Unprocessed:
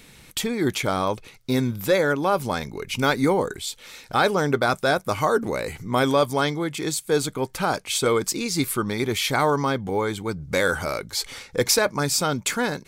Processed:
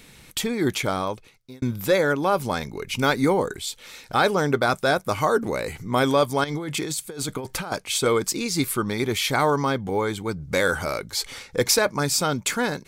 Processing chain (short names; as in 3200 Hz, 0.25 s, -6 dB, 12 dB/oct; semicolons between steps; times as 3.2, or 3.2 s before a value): 0.81–1.62 fade out; 6.44–7.72 negative-ratio compressor -30 dBFS, ratio -1